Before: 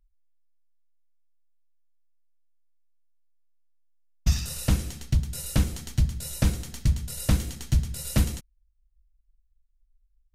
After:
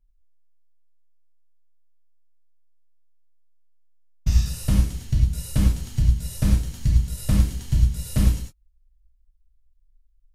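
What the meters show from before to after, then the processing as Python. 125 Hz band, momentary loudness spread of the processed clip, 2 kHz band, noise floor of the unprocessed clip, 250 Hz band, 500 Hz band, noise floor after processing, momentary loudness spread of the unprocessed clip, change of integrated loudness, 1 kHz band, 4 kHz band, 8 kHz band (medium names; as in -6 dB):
+4.5 dB, 2 LU, -2.0 dB, -68 dBFS, +3.5 dB, -1.5 dB, -62 dBFS, 2 LU, +4.5 dB, -1.5 dB, -1.5 dB, -2.0 dB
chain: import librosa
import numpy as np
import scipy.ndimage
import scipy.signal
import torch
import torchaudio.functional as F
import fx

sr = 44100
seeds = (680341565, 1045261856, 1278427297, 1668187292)

y = fx.low_shelf(x, sr, hz=220.0, db=8.0)
y = fx.rev_gated(y, sr, seeds[0], gate_ms=130, shape='flat', drr_db=-2.5)
y = F.gain(torch.from_numpy(y), -6.5).numpy()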